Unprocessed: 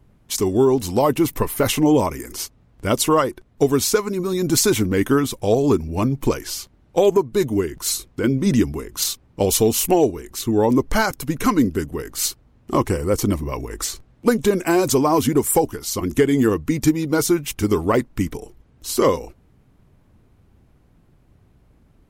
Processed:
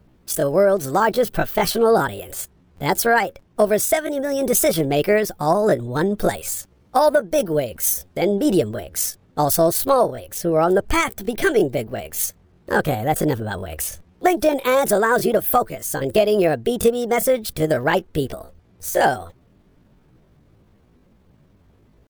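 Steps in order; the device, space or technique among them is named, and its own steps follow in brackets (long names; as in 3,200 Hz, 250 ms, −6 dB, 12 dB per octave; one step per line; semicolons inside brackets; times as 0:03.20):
0:06.17–0:08.22: high-shelf EQ 4,200 Hz +4.5 dB
chipmunk voice (pitch shifter +7 semitones)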